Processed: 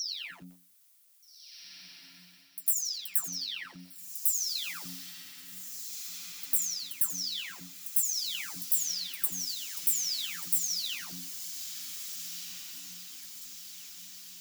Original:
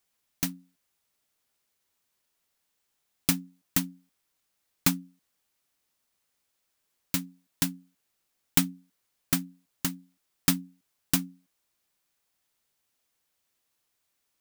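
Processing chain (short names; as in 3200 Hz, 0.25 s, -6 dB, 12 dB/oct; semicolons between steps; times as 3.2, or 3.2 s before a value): spectral delay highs early, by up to 0.607 s; high shelf 2700 Hz +3 dB; pre-echo 0.1 s -17 dB; reverse; compressor 12:1, threshold -38 dBFS, peak gain reduction 22.5 dB; reverse; tilt +3.5 dB/oct; on a send: diffused feedback echo 1.662 s, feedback 56%, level -9 dB; on the sum: lo-fi delay 86 ms, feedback 35%, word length 8-bit, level -13 dB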